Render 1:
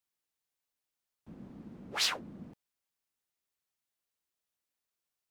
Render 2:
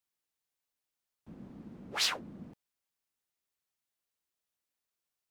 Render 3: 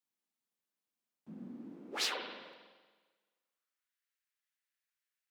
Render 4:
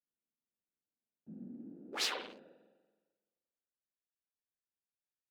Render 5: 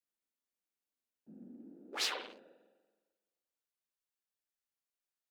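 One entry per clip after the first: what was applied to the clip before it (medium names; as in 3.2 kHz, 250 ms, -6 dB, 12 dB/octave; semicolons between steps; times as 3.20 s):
no audible change
high-pass sweep 200 Hz -> 1.7 kHz, 1.29–4.00 s; spring tank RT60 1.4 s, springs 43/47 ms, chirp 55 ms, DRR 3.5 dB; trim -5 dB
local Wiener filter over 41 samples
peaking EQ 120 Hz -14 dB 1.3 oct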